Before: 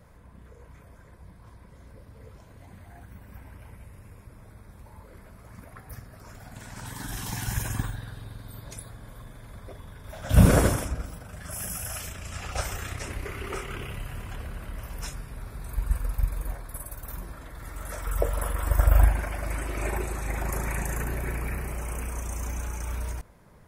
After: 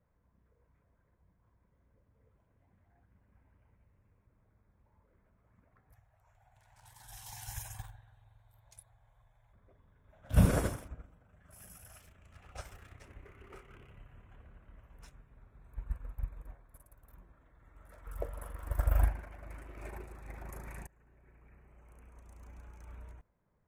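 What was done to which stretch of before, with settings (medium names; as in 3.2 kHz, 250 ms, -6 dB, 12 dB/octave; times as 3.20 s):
5.92–9.53 s: FFT filter 110 Hz 0 dB, 180 Hz -12 dB, 280 Hz -21 dB, 470 Hz -9 dB, 790 Hz +8 dB, 1.2 kHz -3 dB, 2.2 kHz +2 dB, 6.3 kHz +7 dB
20.87–22.89 s: fade in linear, from -17.5 dB
whole clip: local Wiener filter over 9 samples; upward expansion 1.5:1, over -40 dBFS; trim -7 dB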